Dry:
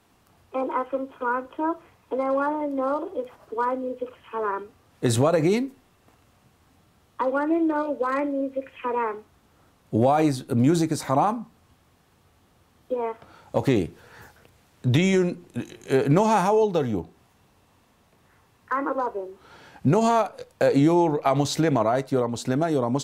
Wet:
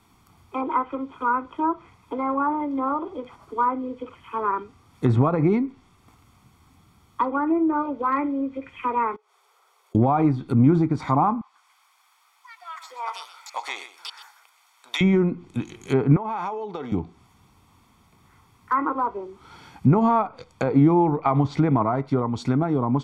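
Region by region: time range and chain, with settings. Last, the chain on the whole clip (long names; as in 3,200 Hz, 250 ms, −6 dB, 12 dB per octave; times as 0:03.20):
0:09.16–0:09.95: linear-phase brick-wall high-pass 380 Hz + downward compressor 4 to 1, threshold −59 dBFS
0:11.41–0:15.01: high-pass filter 770 Hz 24 dB per octave + delay with pitch and tempo change per echo 143 ms, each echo +6 semitones, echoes 2, each echo −6 dB + single-tap delay 126 ms −12.5 dB
0:16.16–0:16.92: high-pass filter 380 Hz + parametric band 8,000 Hz −12 dB 2 octaves + downward compressor 12 to 1, threshold −25 dBFS
whole clip: treble cut that deepens with the level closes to 1,400 Hz, closed at −19 dBFS; comb filter 0.9 ms, depth 62%; level +1 dB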